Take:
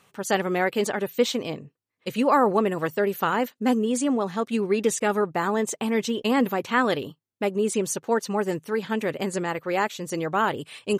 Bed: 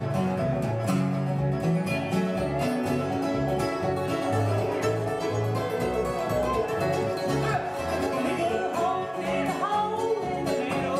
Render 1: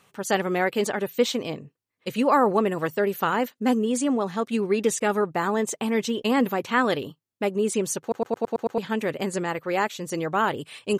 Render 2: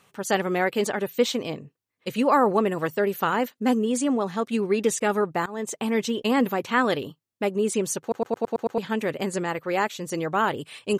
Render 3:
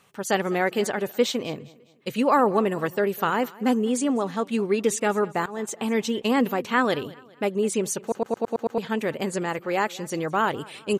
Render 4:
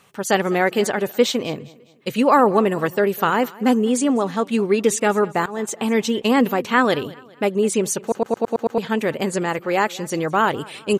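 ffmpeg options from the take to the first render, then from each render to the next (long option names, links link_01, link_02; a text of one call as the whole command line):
ffmpeg -i in.wav -filter_complex "[0:a]asplit=8[link_01][link_02][link_03][link_04][link_05][link_06][link_07][link_08];[link_01]atrim=end=8.122[link_09];[link_02]atrim=start=8.008:end=8.122[link_10];[link_03]atrim=start=8.008:end=8.122[link_11];[link_04]atrim=start=8.008:end=8.122[link_12];[link_05]atrim=start=8.008:end=8.122[link_13];[link_06]atrim=start=8.008:end=8.122[link_14];[link_07]atrim=start=8.008:end=8.122[link_15];[link_08]atrim=start=8.778[link_16];[link_09][link_10]acrossfade=duration=0.004:curve1=hsin:curve2=hsin[link_17];[link_17][link_11]acrossfade=duration=0.004:curve1=hsin:curve2=hsin[link_18];[link_18][link_12]acrossfade=duration=0.004:curve1=hsin:curve2=hsin[link_19];[link_19][link_13]acrossfade=duration=0.004:curve1=hsin:curve2=hsin[link_20];[link_20][link_14]acrossfade=duration=0.004:curve1=hsin:curve2=hsin[link_21];[link_21][link_15]acrossfade=duration=0.004:curve1=hsin:curve2=hsin[link_22];[link_22][link_16]acrossfade=duration=0.004:curve1=hsin:curve2=hsin" out.wav
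ffmpeg -i in.wav -filter_complex "[0:a]asplit=2[link_01][link_02];[link_01]atrim=end=5.46,asetpts=PTS-STARTPTS,afade=type=out:start_time=5.456:duration=0.004:curve=hsin:silence=0.0841395[link_03];[link_02]atrim=start=5.46,asetpts=PTS-STARTPTS,afade=type=in:duration=0.47:curve=qsin:silence=0.0841395[link_04];[link_03][link_04]concat=n=2:v=0:a=1" out.wav
ffmpeg -i in.wav -af "aecho=1:1:203|406|609:0.0841|0.0353|0.0148" out.wav
ffmpeg -i in.wav -af "volume=5dB" out.wav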